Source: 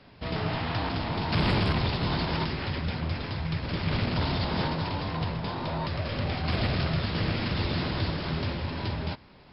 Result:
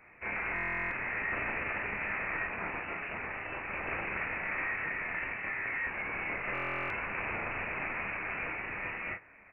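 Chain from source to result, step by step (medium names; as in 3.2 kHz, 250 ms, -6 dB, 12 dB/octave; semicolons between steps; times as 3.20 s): high-pass 460 Hz 12 dB/octave; compression, threshold -31 dBFS, peak gain reduction 6 dB; early reflections 27 ms -7.5 dB, 37 ms -7.5 dB, 50 ms -16.5 dB; frequency inversion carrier 2.8 kHz; buffer glitch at 0.54/6.53 s, samples 1024, times 15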